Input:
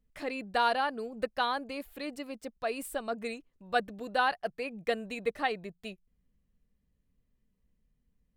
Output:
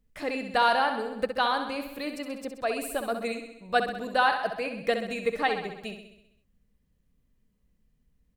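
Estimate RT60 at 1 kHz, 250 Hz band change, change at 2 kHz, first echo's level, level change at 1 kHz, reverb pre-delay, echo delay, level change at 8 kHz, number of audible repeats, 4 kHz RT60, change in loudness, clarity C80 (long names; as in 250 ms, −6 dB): no reverb audible, +5.0 dB, +5.0 dB, −8.0 dB, +5.0 dB, no reverb audible, 65 ms, +5.0 dB, 7, no reverb audible, +5.0 dB, no reverb audible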